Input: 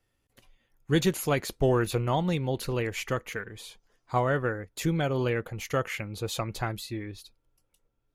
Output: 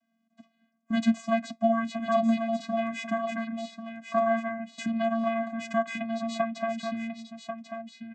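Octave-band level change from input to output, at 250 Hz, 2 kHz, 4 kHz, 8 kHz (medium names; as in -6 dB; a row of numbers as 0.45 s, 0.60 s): +4.0 dB, -1.5 dB, -5.0 dB, -9.5 dB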